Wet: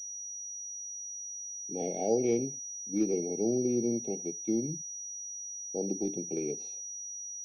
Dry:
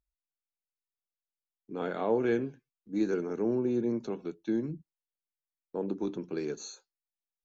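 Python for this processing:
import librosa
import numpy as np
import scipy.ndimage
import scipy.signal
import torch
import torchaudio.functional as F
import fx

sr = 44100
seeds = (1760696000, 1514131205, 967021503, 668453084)

y = fx.brickwall_bandstop(x, sr, low_hz=840.0, high_hz=2100.0)
y = fx.pwm(y, sr, carrier_hz=5800.0)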